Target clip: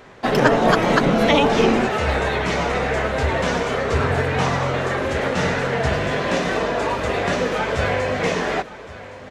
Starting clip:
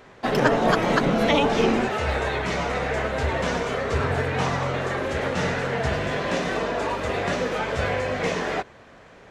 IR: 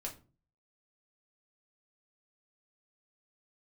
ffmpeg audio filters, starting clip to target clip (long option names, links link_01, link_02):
-af "aecho=1:1:1116|2232|3348|4464:0.133|0.064|0.0307|0.0147,volume=4dB"